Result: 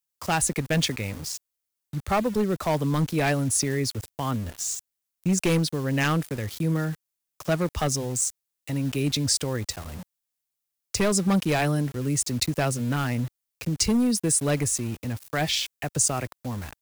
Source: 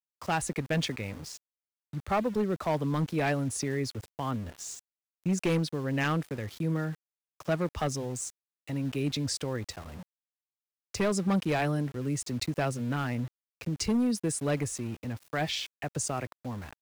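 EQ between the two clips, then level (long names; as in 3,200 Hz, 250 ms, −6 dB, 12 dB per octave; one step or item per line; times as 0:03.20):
low-shelf EQ 100 Hz +6 dB
high-shelf EQ 5,000 Hz +11 dB
+3.5 dB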